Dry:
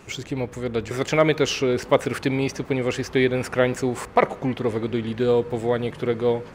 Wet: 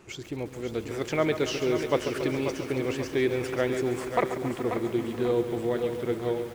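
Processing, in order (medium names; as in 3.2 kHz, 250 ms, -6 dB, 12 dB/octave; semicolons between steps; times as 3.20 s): peaking EQ 350 Hz +8.5 dB 0.21 oct; on a send: feedback delay 538 ms, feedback 45%, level -8 dB; on the sum: bit-crushed delay 139 ms, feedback 80%, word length 6-bit, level -11 dB; trim -8 dB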